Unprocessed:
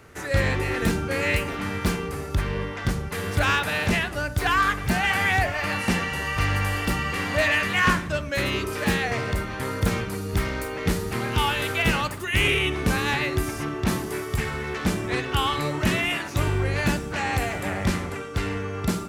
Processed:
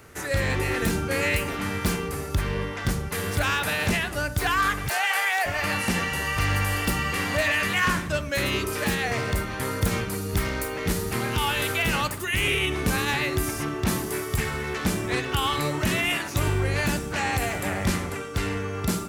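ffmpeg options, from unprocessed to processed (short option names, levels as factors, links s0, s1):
-filter_complex "[0:a]asplit=3[s0][s1][s2];[s0]afade=t=out:st=4.88:d=0.02[s3];[s1]highpass=f=500:w=0.5412,highpass=f=500:w=1.3066,afade=t=in:st=4.88:d=0.02,afade=t=out:st=5.45:d=0.02[s4];[s2]afade=t=in:st=5.45:d=0.02[s5];[s3][s4][s5]amix=inputs=3:normalize=0,highshelf=f=7000:g=8.5,alimiter=limit=0.2:level=0:latency=1:release=63"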